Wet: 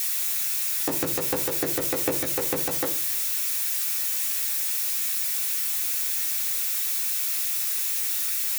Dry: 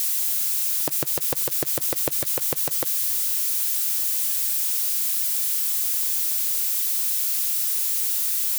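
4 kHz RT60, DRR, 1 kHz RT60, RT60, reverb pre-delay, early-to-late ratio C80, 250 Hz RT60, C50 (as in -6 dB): 0.55 s, -3.0 dB, 0.40 s, 0.45 s, 3 ms, 17.0 dB, 0.70 s, 12.5 dB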